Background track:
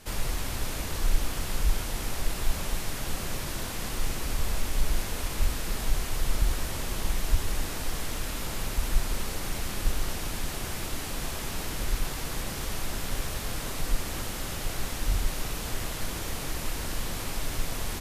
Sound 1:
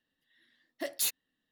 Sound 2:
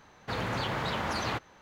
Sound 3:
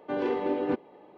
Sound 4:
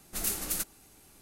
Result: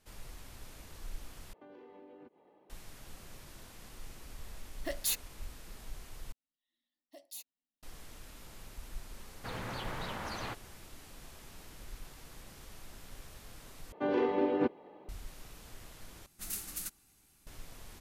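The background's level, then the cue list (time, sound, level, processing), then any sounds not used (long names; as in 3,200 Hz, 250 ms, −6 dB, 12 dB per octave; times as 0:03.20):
background track −18.5 dB
0:01.53: overwrite with 3 −12 dB + downward compressor 8 to 1, threshold −39 dBFS
0:04.05: mix in 1 −2 dB
0:06.32: overwrite with 1 −16 dB + phaser with its sweep stopped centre 410 Hz, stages 6
0:09.16: mix in 2 −8.5 dB
0:13.92: overwrite with 3 −1.5 dB
0:16.26: overwrite with 4 −8 dB + parametric band 500 Hz −8 dB 1.7 octaves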